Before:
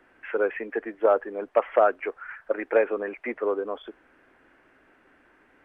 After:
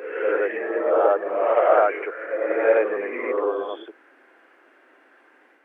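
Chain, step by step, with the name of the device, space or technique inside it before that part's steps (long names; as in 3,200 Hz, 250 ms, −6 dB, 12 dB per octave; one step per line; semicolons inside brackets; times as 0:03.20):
ghost voice (reversed playback; convolution reverb RT60 1.0 s, pre-delay 53 ms, DRR −3 dB; reversed playback; high-pass filter 310 Hz 24 dB per octave)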